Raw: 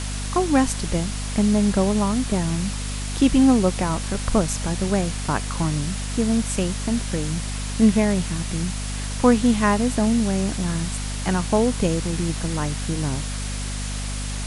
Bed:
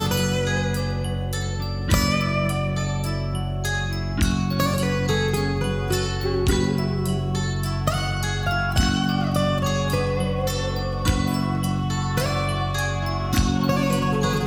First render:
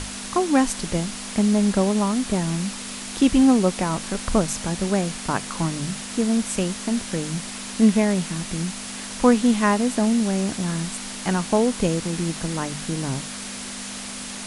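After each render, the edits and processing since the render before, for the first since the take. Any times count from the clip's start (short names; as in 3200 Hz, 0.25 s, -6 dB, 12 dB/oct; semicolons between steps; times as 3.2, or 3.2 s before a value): notches 50/100/150 Hz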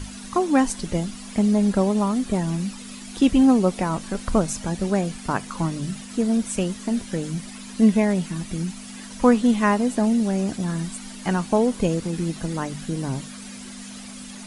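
denoiser 11 dB, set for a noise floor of -34 dBFS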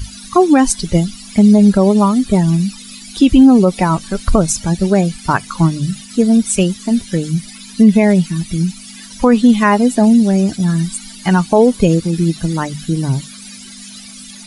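per-bin expansion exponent 1.5; maximiser +14.5 dB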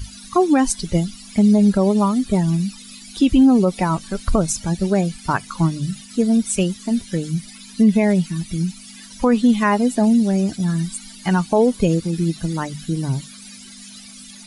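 gain -5.5 dB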